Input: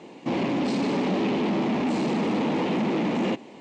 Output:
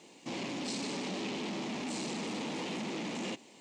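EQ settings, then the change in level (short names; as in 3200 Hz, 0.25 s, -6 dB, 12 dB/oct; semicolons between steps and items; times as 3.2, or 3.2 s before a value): pre-emphasis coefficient 0.8; high shelf 4200 Hz +7.5 dB; 0.0 dB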